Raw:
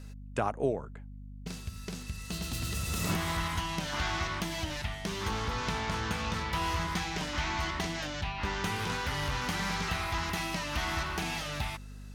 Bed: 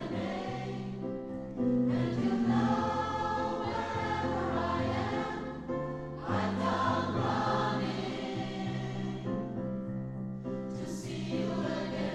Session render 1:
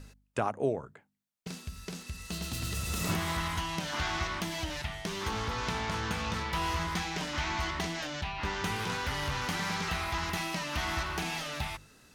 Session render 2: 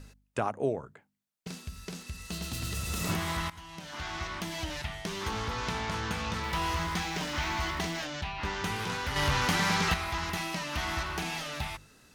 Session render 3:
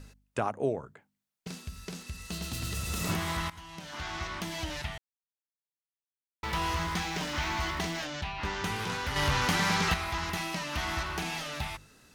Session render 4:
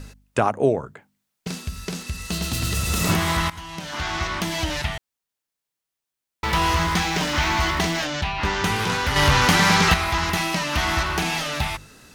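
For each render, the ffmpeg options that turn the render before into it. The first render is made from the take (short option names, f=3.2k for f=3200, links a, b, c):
-af "bandreject=f=50:t=h:w=4,bandreject=f=100:t=h:w=4,bandreject=f=150:t=h:w=4,bandreject=f=200:t=h:w=4,bandreject=f=250:t=h:w=4"
-filter_complex "[0:a]asettb=1/sr,asplit=3[a][b][c];[a]atrim=end=6.434[d];[b]atrim=start=6.43:end=8.02,asetpts=PTS-STARTPTS,afade=t=in:d=0.004:c=qsin,afade=t=out:st=1.586:d=0.004:c=qsin,aeval=exprs='val(0)+0.5*0.00668*sgn(val(0))':c=same[e];[c]atrim=start=8.016[f];[d][e]acrossfade=d=0.004:c1=hsin:c2=qsin[g];[g][f]acrossfade=d=0.004:c1=qsin:c2=hsin,asplit=4[h][i][j][k];[h]atrim=end=3.5,asetpts=PTS-STARTPTS,afade=t=out:st=3.496:d=0.004:c=hsin:silence=0.133352[l];[i]atrim=start=3.5:end=9.162,asetpts=PTS-STARTPTS,afade=t=in:d=1.17:silence=0.133352[m];[j]atrim=start=9.158:end=9.942,asetpts=PTS-STARTPTS,volume=6dB[n];[k]atrim=start=9.938[o];[l][m]concat=n=2:v=0:a=1[p];[p][n]acrossfade=d=0.004:c1=hsin:c2=hsin[q];[q][o]acrossfade=d=0.004:c1=hsin:c2=hsin"
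-filter_complex "[0:a]asplit=3[a][b][c];[a]atrim=end=4.98,asetpts=PTS-STARTPTS,afade=t=out:st=4.976:d=0.004:c=hsin[d];[b]atrim=start=4.98:end=6.43,asetpts=PTS-STARTPTS,volume=0[e];[c]atrim=start=6.43,asetpts=PTS-STARTPTS,afade=t=in:d=0.004:c=hsin[f];[d][e][f]concat=n=3:v=0:a=1"
-af "volume=10.5dB"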